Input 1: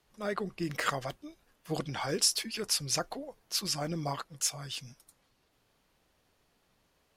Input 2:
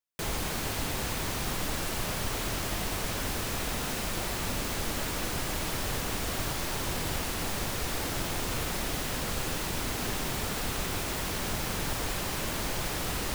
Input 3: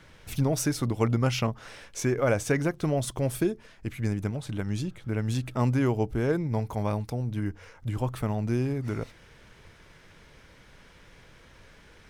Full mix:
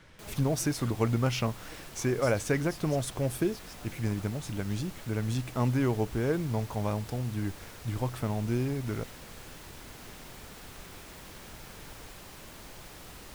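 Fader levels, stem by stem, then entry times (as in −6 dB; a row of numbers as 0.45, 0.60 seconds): −19.0, −15.0, −2.5 decibels; 0.00, 0.00, 0.00 seconds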